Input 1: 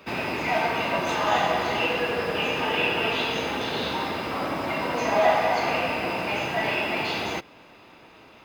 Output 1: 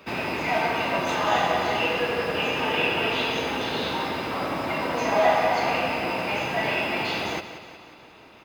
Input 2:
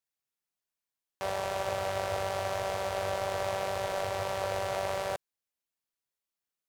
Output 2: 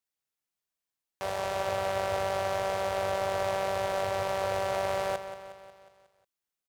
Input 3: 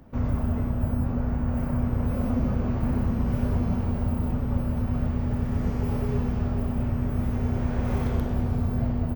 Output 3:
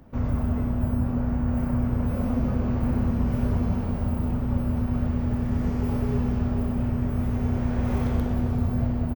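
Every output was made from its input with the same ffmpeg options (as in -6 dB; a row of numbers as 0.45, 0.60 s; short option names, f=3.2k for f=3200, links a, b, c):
-af "aecho=1:1:181|362|543|724|905|1086:0.237|0.135|0.077|0.0439|0.025|0.0143"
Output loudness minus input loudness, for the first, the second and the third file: +0.5, +2.5, +1.0 LU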